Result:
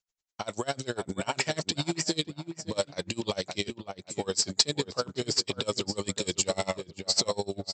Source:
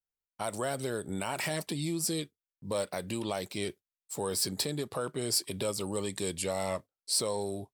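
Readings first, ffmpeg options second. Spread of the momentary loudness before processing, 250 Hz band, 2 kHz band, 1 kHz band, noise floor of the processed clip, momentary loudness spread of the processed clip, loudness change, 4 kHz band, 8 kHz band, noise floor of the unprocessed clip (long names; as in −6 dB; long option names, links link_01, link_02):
8 LU, +1.5 dB, +3.5 dB, +2.0 dB, −71 dBFS, 9 LU, +3.0 dB, +7.0 dB, +2.5 dB, below −85 dBFS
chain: -filter_complex "[0:a]aemphasis=mode=production:type=75fm,asplit=2[link_01][link_02];[link_02]adelay=558,lowpass=frequency=2000:poles=1,volume=-7.5dB,asplit=2[link_03][link_04];[link_04]adelay=558,lowpass=frequency=2000:poles=1,volume=0.36,asplit=2[link_05][link_06];[link_06]adelay=558,lowpass=frequency=2000:poles=1,volume=0.36,asplit=2[link_07][link_08];[link_08]adelay=558,lowpass=frequency=2000:poles=1,volume=0.36[link_09];[link_01][link_03][link_05][link_07][link_09]amix=inputs=5:normalize=0,aresample=16000,aeval=exprs='0.299*sin(PI/2*1.58*val(0)/0.299)':channel_layout=same,aresample=44100,aeval=exprs='val(0)*pow(10,-27*(0.5-0.5*cos(2*PI*10*n/s))/20)':channel_layout=same"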